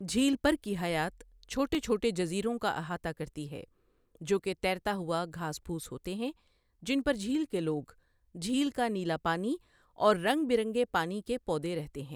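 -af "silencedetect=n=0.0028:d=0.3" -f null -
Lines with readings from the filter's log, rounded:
silence_start: 3.64
silence_end: 4.15 | silence_duration: 0.51
silence_start: 6.32
silence_end: 6.83 | silence_duration: 0.51
silence_start: 7.92
silence_end: 8.35 | silence_duration: 0.43
silence_start: 9.57
silence_end: 9.97 | silence_duration: 0.40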